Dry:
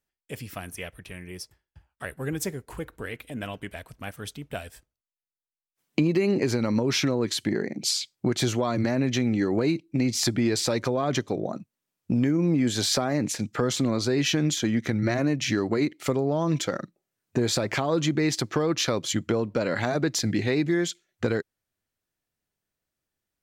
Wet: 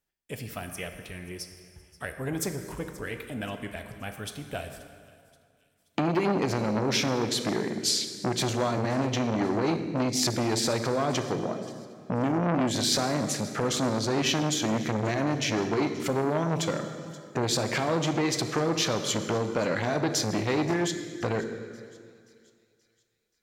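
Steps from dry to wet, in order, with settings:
delay with a high-pass on its return 529 ms, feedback 47%, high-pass 3,200 Hz, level −19 dB
convolution reverb RT60 2.2 s, pre-delay 8 ms, DRR 7 dB
saturating transformer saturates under 1,000 Hz

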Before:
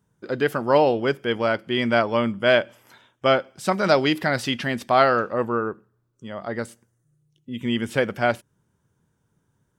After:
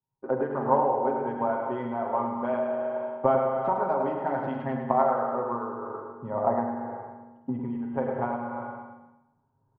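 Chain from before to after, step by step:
adaptive Wiener filter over 9 samples
camcorder AGC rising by 7.5 dB per second
in parallel at −7.5 dB: floating-point word with a short mantissa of 2 bits
on the sum: spring reverb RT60 1.4 s, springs 38/42 ms, chirp 50 ms, DRR 2.5 dB
downward compressor 20 to 1, threshold −27 dBFS, peak gain reduction 20.5 dB
low-pass with resonance 900 Hz, resonance Q 4.7
low-shelf EQ 130 Hz −5.5 dB
mains-hum notches 50/100/150 Hz
comb filter 7.5 ms, depth 65%
on a send: repeating echo 105 ms, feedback 48%, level −6.5 dB
on the sum: multiband upward and downward expander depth 70%
level −2 dB

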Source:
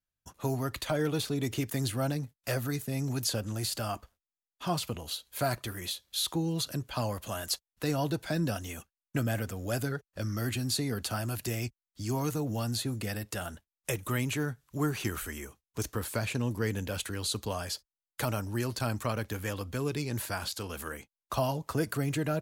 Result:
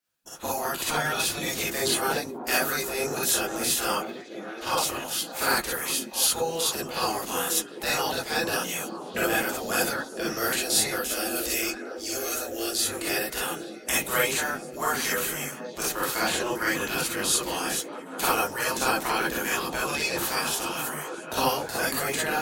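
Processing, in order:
gate on every frequency bin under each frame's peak −10 dB weak
0:10.96–0:12.83: phaser with its sweep stopped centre 390 Hz, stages 4
on a send: echo through a band-pass that steps 483 ms, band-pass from 250 Hz, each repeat 0.7 octaves, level −3 dB
on the sum: reverb whose tail is shaped and stops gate 80 ms rising, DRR −5.5 dB
level +6.5 dB

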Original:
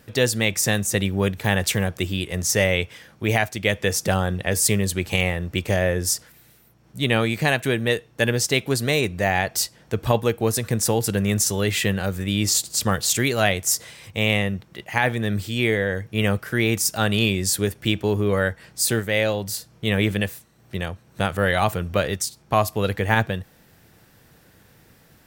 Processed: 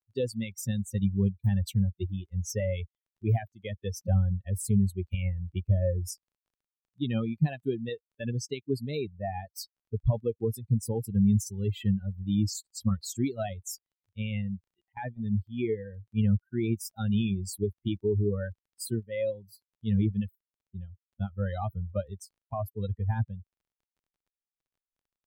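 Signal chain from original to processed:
spectral dynamics exaggerated over time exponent 3
brickwall limiter −20 dBFS, peak gain reduction 9.5 dB
parametric band 1,600 Hz −11 dB 1.9 octaves
surface crackle 19 per second −61 dBFS
0:14.92–0:15.37: noise gate −40 dBFS, range −19 dB
spectral tilt −2 dB per octave

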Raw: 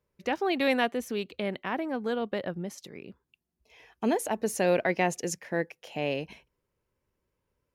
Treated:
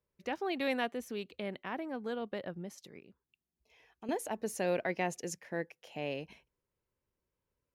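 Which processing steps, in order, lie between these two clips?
0:02.99–0:04.09: downward compressor 1.5 to 1, threshold −57 dBFS, peak gain reduction 12 dB
level −7.5 dB

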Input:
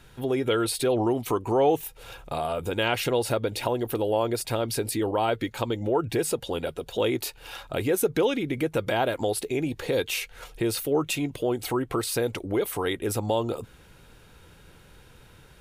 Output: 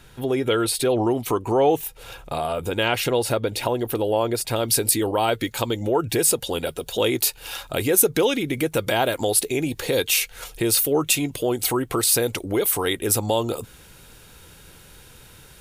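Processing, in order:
high-shelf EQ 4,300 Hz +3 dB, from 0:04.56 +12 dB
level +3 dB

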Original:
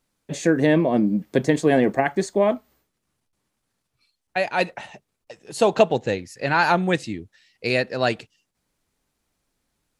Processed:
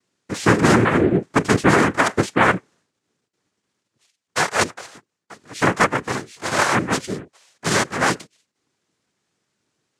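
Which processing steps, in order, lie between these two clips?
0:04.73–0:07.02: multi-voice chorus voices 6, 1 Hz, delay 21 ms, depth 4.5 ms
cochlear-implant simulation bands 3
level +3 dB

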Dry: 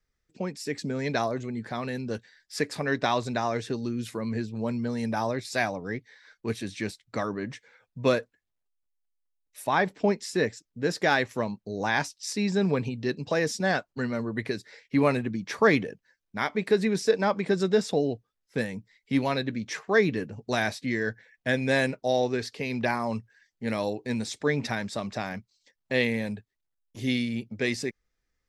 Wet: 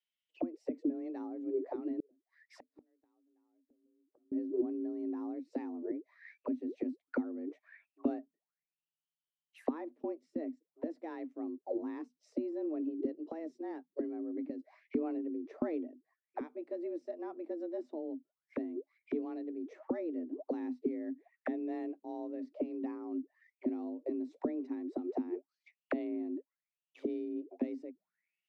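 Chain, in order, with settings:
frequency shifter +160 Hz
envelope filter 250–3,100 Hz, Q 14, down, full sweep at −28 dBFS
0:02.00–0:04.32: gate with flip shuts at −47 dBFS, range −35 dB
level +9 dB

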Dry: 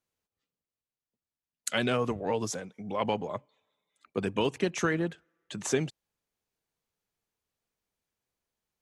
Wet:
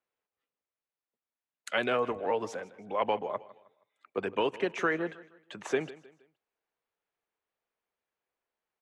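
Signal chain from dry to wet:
three-way crossover with the lows and the highs turned down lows −15 dB, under 340 Hz, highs −17 dB, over 3,000 Hz
repeating echo 157 ms, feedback 36%, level −18.5 dB
level +2 dB

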